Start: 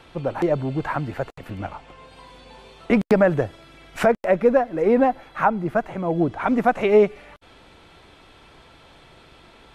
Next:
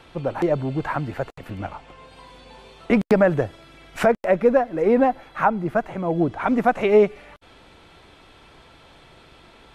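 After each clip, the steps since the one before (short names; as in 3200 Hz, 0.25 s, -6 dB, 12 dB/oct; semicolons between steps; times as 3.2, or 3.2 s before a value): nothing audible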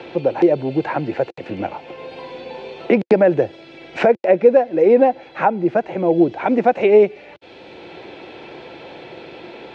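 speaker cabinet 130–5900 Hz, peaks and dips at 350 Hz +9 dB, 510 Hz +8 dB, 800 Hz +4 dB, 1200 Hz -9 dB, 2500 Hz +6 dB, 4100 Hz +3 dB; three-band squash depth 40%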